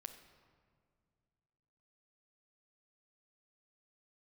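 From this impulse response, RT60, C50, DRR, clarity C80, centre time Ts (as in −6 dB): 2.1 s, 9.0 dB, 6.5 dB, 10.5 dB, 19 ms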